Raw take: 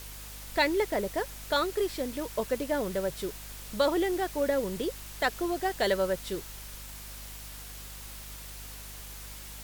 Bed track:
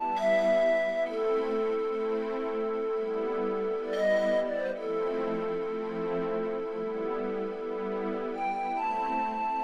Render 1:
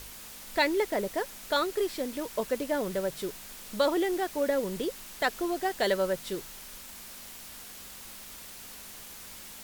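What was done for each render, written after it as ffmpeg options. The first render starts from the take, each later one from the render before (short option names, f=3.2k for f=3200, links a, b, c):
-af "bandreject=f=50:t=h:w=4,bandreject=f=100:t=h:w=4,bandreject=f=150:t=h:w=4"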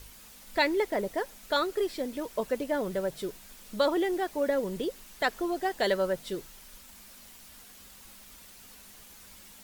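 -af "afftdn=nr=7:nf=-46"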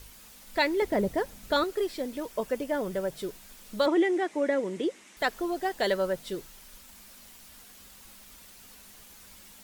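-filter_complex "[0:a]asettb=1/sr,asplit=3[a][b][c];[a]atrim=end=0.824[d];[b]atrim=start=0.82:end=1.64,asetpts=PTS-STARTPTS,afade=t=in:d=0.004:c=qsin,afade=t=out:st=0.816:d=0.004:c=qsin,equalizer=f=88:w=0.43:g=15[e];[c]atrim=start=1.636[f];[d][e]acrossfade=d=0.004:c1=hsin:c2=qsin[g];[g][f]acrossfade=d=0.004:c1=qsin:c2=hsin,asettb=1/sr,asplit=3[h][i][j];[h]atrim=end=2.314[k];[i]atrim=start=2.31:end=3.14,asetpts=PTS-STARTPTS,afade=t=in:d=0.004:c=qsin,afade=t=out:st=0.826:d=0.004:c=qsin,bandreject=f=4k:w=12[l];[j]atrim=start=3.136[m];[k][l]acrossfade=d=0.004:c1=hsin:c2=qsin[n];[n][m]acrossfade=d=0.004:c1=qsin:c2=hsin,asettb=1/sr,asplit=3[o][p][q];[o]atrim=end=3.864[r];[p]atrim=start=3.86:end=5.17,asetpts=PTS-STARTPTS,afade=t=in:d=0.004:c=qsin,afade=t=out:st=1.306:d=0.004:c=qsin,highpass=180,equalizer=f=320:t=q:w=4:g=7,equalizer=f=2.1k:t=q:w=4:g=8,equalizer=f=4.5k:t=q:w=4:g=-6,lowpass=f=8.8k:w=0.5412,lowpass=f=8.8k:w=1.3066[s];[q]atrim=start=5.166[t];[r][s]acrossfade=d=0.004:c1=hsin:c2=qsin[u];[u][t]acrossfade=d=0.004:c1=qsin:c2=hsin"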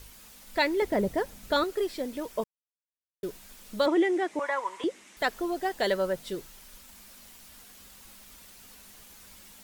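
-filter_complex "[0:a]asettb=1/sr,asplit=3[a][b][c];[a]atrim=end=4.394[d];[b]atrim=start=4.39:end=4.84,asetpts=PTS-STARTPTS,afade=t=in:d=0.004:c=qsin,afade=t=out:st=0.446:d=0.004:c=qsin,highpass=f=1k:t=q:w=10[e];[c]atrim=start=4.836[f];[d][e]acrossfade=d=0.004:c1=hsin:c2=qsin[g];[g][f]acrossfade=d=0.004:c1=qsin:c2=hsin,asplit=3[h][i][j];[h]atrim=end=2.44,asetpts=PTS-STARTPTS,afade=t=out:st=2.436:d=0.004:c=hsin[k];[i]atrim=start=2.44:end=3.23,asetpts=PTS-STARTPTS,volume=0[l];[j]atrim=start=3.23,asetpts=PTS-STARTPTS,afade=t=in:d=0.004:c=hsin[m];[k][l][m]concat=n=3:v=0:a=1"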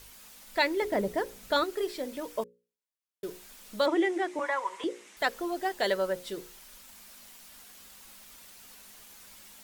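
-af "lowshelf=f=220:g=-7.5,bandreject=f=60:t=h:w=6,bandreject=f=120:t=h:w=6,bandreject=f=180:t=h:w=6,bandreject=f=240:t=h:w=6,bandreject=f=300:t=h:w=6,bandreject=f=360:t=h:w=6,bandreject=f=420:t=h:w=6,bandreject=f=480:t=h:w=6,bandreject=f=540:t=h:w=6"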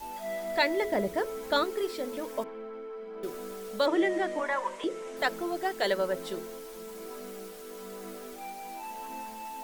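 -filter_complex "[1:a]volume=-10.5dB[a];[0:a][a]amix=inputs=2:normalize=0"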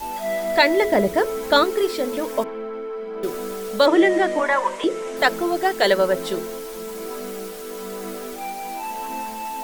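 -af "volume=10.5dB,alimiter=limit=-2dB:level=0:latency=1"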